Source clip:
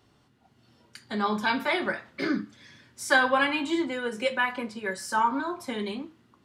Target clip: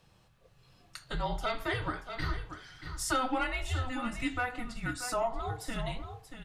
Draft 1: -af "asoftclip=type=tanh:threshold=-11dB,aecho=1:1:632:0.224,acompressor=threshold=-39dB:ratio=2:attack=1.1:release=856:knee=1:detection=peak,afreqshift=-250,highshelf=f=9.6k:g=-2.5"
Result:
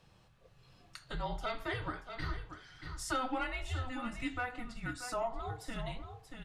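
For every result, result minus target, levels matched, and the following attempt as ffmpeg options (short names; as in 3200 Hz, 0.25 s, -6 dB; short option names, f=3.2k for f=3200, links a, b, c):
compressor: peak gain reduction +4.5 dB; 8000 Hz band -2.5 dB
-af "asoftclip=type=tanh:threshold=-11dB,aecho=1:1:632:0.224,acompressor=threshold=-30dB:ratio=2:attack=1.1:release=856:knee=1:detection=peak,afreqshift=-250,highshelf=f=9.6k:g=-2.5"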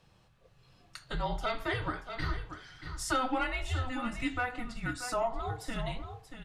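8000 Hz band -2.5 dB
-af "asoftclip=type=tanh:threshold=-11dB,aecho=1:1:632:0.224,acompressor=threshold=-30dB:ratio=2:attack=1.1:release=856:knee=1:detection=peak,afreqshift=-250,highshelf=f=9.6k:g=5"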